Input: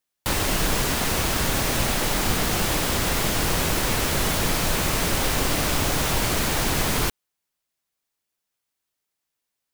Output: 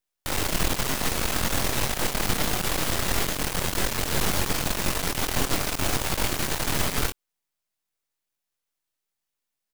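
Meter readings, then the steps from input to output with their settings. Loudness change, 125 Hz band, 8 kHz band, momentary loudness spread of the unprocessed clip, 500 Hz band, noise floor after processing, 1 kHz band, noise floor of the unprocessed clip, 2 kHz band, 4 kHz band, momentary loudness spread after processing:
-3.5 dB, -4.5 dB, -3.0 dB, 0 LU, -4.0 dB, -84 dBFS, -3.5 dB, -82 dBFS, -3.5 dB, -3.0 dB, 2 LU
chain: doubler 22 ms -6.5 dB; half-wave rectifier

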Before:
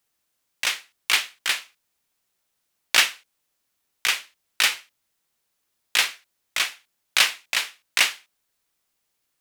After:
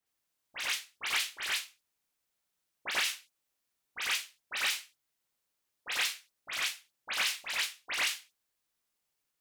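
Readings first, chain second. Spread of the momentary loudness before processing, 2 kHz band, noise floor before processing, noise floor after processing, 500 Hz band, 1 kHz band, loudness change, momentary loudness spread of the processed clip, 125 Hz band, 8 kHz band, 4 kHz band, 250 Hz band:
9 LU, -9.5 dB, -76 dBFS, -83 dBFS, -8.0 dB, -8.5 dB, -10.0 dB, 14 LU, n/a, -9.5 dB, -10.0 dB, -8.0 dB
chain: dispersion highs, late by 69 ms, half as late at 2600 Hz; limiter -11.5 dBFS, peak gain reduction 7.5 dB; reverse echo 93 ms -5.5 dB; gain -8.5 dB

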